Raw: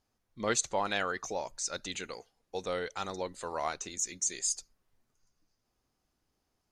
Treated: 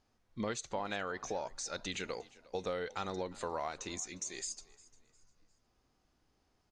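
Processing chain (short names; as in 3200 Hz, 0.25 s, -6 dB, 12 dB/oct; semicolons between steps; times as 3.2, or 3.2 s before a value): harmonic-percussive split harmonic +5 dB; compressor 6:1, threshold -36 dBFS, peak gain reduction 12 dB; air absorption 59 m; on a send: frequency-shifting echo 0.354 s, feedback 36%, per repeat +35 Hz, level -21.5 dB; on the sum: gain +2 dB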